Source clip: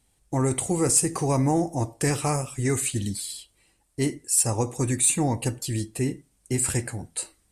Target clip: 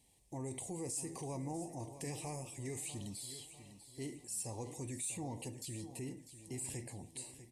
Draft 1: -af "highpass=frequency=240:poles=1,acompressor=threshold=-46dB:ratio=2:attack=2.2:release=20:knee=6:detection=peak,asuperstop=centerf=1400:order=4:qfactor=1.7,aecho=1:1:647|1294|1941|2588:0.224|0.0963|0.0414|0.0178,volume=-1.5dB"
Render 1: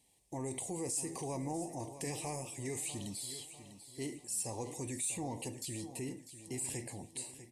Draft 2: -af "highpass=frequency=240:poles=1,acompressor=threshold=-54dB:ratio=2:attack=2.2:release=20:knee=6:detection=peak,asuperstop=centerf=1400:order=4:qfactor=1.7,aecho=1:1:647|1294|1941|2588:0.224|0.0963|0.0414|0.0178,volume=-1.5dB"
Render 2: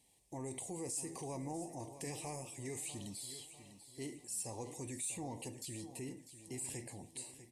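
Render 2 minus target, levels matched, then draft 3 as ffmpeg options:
125 Hz band −3.0 dB
-af "highpass=frequency=91:poles=1,acompressor=threshold=-54dB:ratio=2:attack=2.2:release=20:knee=6:detection=peak,asuperstop=centerf=1400:order=4:qfactor=1.7,aecho=1:1:647|1294|1941|2588:0.224|0.0963|0.0414|0.0178,volume=-1.5dB"

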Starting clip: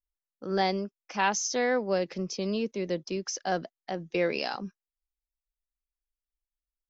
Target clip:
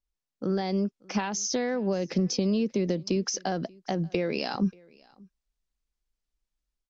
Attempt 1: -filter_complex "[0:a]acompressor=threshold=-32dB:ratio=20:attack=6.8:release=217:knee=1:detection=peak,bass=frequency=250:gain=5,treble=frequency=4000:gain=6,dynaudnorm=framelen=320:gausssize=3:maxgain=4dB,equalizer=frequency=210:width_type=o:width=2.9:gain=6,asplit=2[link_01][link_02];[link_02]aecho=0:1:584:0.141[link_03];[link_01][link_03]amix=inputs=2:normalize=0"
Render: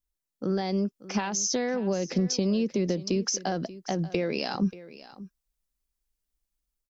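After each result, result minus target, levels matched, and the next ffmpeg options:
echo-to-direct +9.5 dB; 8,000 Hz band +2.5 dB
-filter_complex "[0:a]acompressor=threshold=-32dB:ratio=20:attack=6.8:release=217:knee=1:detection=peak,bass=frequency=250:gain=5,treble=frequency=4000:gain=6,dynaudnorm=framelen=320:gausssize=3:maxgain=4dB,equalizer=frequency=210:width_type=o:width=2.9:gain=6,asplit=2[link_01][link_02];[link_02]aecho=0:1:584:0.0473[link_03];[link_01][link_03]amix=inputs=2:normalize=0"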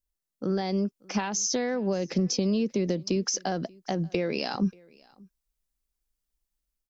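8,000 Hz band +2.5 dB
-filter_complex "[0:a]acompressor=threshold=-32dB:ratio=20:attack=6.8:release=217:knee=1:detection=peak,lowpass=6200,bass=frequency=250:gain=5,treble=frequency=4000:gain=6,dynaudnorm=framelen=320:gausssize=3:maxgain=4dB,equalizer=frequency=210:width_type=o:width=2.9:gain=6,asplit=2[link_01][link_02];[link_02]aecho=0:1:584:0.0473[link_03];[link_01][link_03]amix=inputs=2:normalize=0"

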